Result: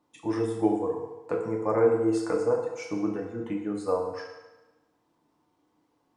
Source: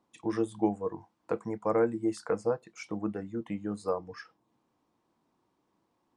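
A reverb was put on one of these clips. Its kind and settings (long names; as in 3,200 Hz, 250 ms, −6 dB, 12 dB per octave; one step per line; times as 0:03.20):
feedback delay network reverb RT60 1.1 s, low-frequency decay 0.7×, high-frequency decay 0.85×, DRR −1 dB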